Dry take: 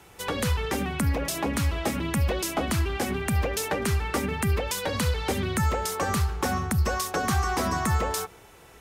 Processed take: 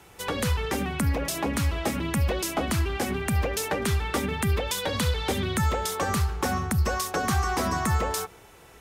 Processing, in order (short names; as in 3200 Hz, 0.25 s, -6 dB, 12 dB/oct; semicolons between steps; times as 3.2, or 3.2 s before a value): 3.85–6.04 bell 3500 Hz +6.5 dB 0.23 oct